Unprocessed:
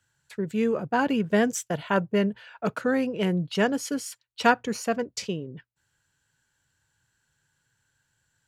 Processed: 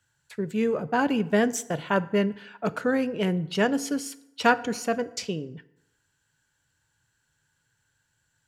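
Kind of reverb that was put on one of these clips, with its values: FDN reverb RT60 0.87 s, low-frequency decay 0.95×, high-frequency decay 0.65×, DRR 14.5 dB

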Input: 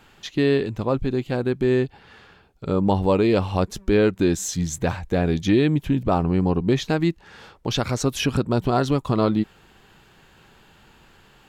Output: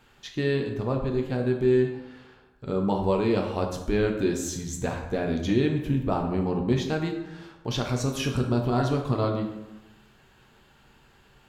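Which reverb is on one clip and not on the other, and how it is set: plate-style reverb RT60 1 s, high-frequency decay 0.6×, DRR 2 dB; gain -7 dB

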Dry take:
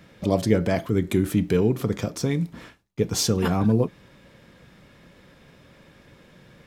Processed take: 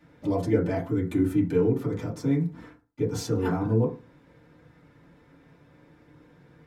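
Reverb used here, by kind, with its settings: FDN reverb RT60 0.32 s, low-frequency decay 1.1×, high-frequency decay 0.25×, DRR -9 dB; gain -15 dB

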